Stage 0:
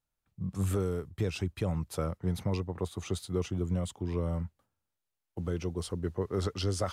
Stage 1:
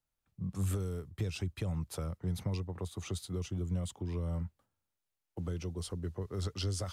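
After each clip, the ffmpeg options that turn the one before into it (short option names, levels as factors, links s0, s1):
-filter_complex "[0:a]acrossover=split=160|3000[s0][s1][s2];[s1]acompressor=threshold=0.0126:ratio=6[s3];[s0][s3][s2]amix=inputs=3:normalize=0,volume=0.841"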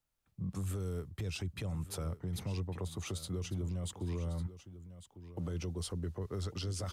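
-af "alimiter=level_in=2.66:limit=0.0631:level=0:latency=1:release=29,volume=0.376,aecho=1:1:1150:0.2,volume=1.26"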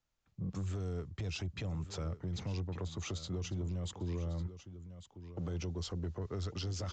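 -af "asoftclip=type=tanh:threshold=0.0237,aresample=16000,aresample=44100,volume=1.19"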